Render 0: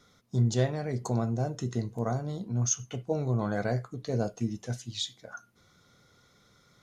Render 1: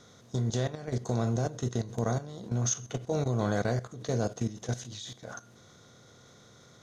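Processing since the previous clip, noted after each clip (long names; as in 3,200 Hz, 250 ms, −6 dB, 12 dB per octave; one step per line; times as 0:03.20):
compressor on every frequency bin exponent 0.6
output level in coarse steps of 14 dB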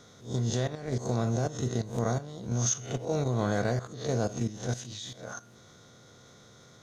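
peak hold with a rise ahead of every peak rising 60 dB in 0.34 s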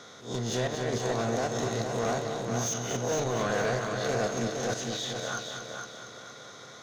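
mid-hump overdrive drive 23 dB, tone 3,600 Hz, clips at −13.5 dBFS
echo machine with several playback heads 231 ms, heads first and second, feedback 45%, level −7.5 dB
level −6.5 dB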